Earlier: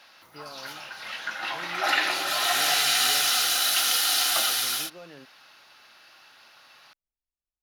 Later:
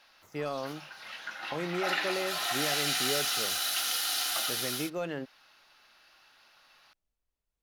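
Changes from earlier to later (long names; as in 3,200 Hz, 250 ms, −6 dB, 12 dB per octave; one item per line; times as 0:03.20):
speech +11.0 dB
background −7.5 dB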